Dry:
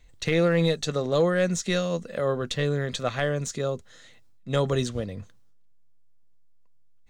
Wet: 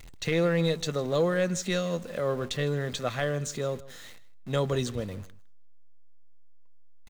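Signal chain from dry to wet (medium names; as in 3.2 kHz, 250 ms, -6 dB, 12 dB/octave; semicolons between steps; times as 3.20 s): jump at every zero crossing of -39.5 dBFS; echo from a far wall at 27 m, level -19 dB; trim -3.5 dB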